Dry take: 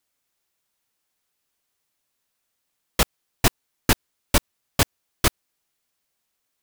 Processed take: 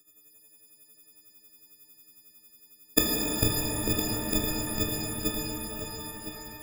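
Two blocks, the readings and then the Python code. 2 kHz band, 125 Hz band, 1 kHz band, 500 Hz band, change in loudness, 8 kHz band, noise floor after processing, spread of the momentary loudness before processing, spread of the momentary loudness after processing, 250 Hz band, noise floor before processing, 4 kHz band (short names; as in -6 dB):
-7.5 dB, -4.0 dB, -8.5 dB, -2.5 dB, -3.5 dB, -2.5 dB, -61 dBFS, 4 LU, 11 LU, +0.5 dB, -78 dBFS, -4.0 dB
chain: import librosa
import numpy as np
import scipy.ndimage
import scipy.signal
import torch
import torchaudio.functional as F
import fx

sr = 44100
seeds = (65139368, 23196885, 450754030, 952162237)

p1 = fx.freq_snap(x, sr, grid_st=6)
p2 = fx.low_shelf_res(p1, sr, hz=560.0, db=13.5, q=1.5)
p3 = fx.gate_flip(p2, sr, shuts_db=-5.0, range_db=-27)
p4 = p3 * (1.0 - 0.99 / 2.0 + 0.99 / 2.0 * np.cos(2.0 * np.pi * 11.0 * (np.arange(len(p3)) / sr)))
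p5 = p4 + fx.echo_single(p4, sr, ms=1010, db=-10.0, dry=0)
p6 = fx.rev_shimmer(p5, sr, seeds[0], rt60_s=3.8, semitones=12, shimmer_db=-8, drr_db=-3.0)
y = p6 * 10.0 ** (4.0 / 20.0)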